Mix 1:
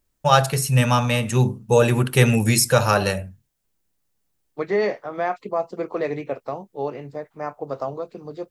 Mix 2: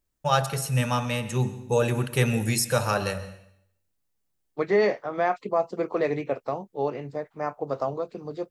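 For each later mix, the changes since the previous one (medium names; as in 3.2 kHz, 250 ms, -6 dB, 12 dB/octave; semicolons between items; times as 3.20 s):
first voice -8.5 dB; reverb: on, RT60 0.70 s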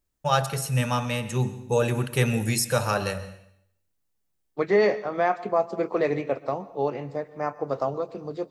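second voice: send on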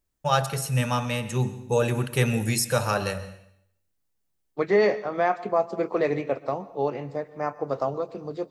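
no change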